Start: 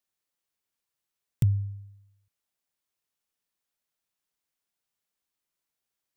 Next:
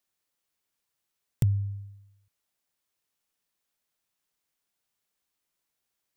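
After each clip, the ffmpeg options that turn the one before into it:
-af "acompressor=threshold=-32dB:ratio=1.5,volume=3.5dB"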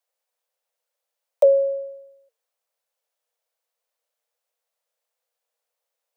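-af "lowshelf=f=380:g=12,afreqshift=450,volume=-2dB"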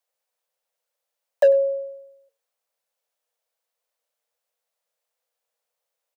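-af "asoftclip=type=hard:threshold=-10dB,aecho=1:1:95:0.075"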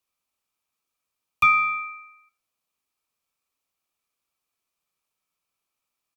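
-filter_complex "[0:a]asplit=2[a][b];[b]asoftclip=type=tanh:threshold=-26.5dB,volume=-9dB[c];[a][c]amix=inputs=2:normalize=0,aeval=exprs='val(0)*sin(2*PI*1800*n/s)':c=same"

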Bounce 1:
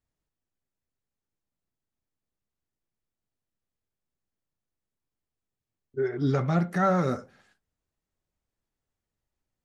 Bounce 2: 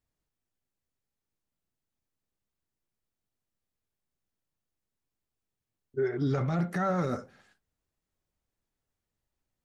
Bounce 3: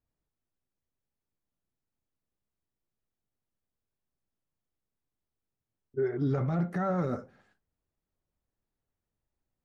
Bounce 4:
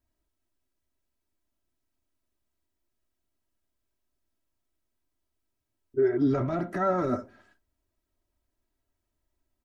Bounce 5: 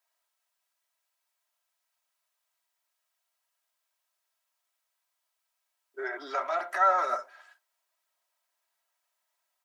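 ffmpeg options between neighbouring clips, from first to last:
-af "alimiter=limit=-21dB:level=0:latency=1:release=13"
-af "highshelf=f=2.1k:g=-11.5"
-af "aecho=1:1:3.1:0.72,volume=3.5dB"
-af "highpass=f=740:w=0.5412,highpass=f=740:w=1.3066,volume=7dB"

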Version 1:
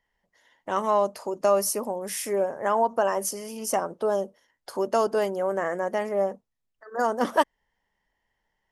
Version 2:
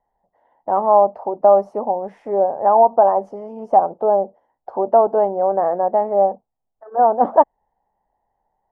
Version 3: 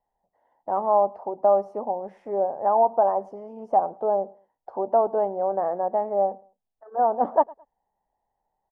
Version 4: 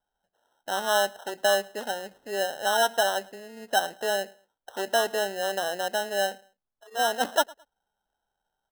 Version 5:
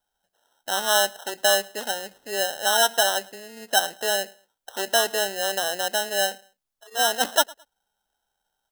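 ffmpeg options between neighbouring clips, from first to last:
-af "lowpass=f=780:t=q:w=4.9,volume=2dB"
-af "aecho=1:1:108|216:0.0631|0.017,volume=-7dB"
-af "acrusher=samples=19:mix=1:aa=0.000001,volume=-4dB"
-af "highshelf=f=2.1k:g=9.5"

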